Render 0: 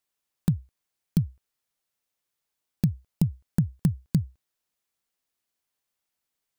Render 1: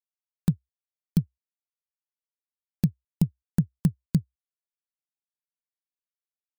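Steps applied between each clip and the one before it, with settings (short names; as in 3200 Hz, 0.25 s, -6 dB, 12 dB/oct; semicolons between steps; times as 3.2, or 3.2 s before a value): upward expander 2.5:1, over -40 dBFS; gain +2 dB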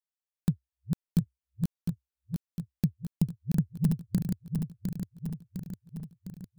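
regenerating reverse delay 0.353 s, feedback 77%, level -4 dB; gain -4 dB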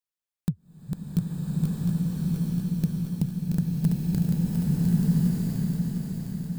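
bloom reverb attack 1.34 s, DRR -6 dB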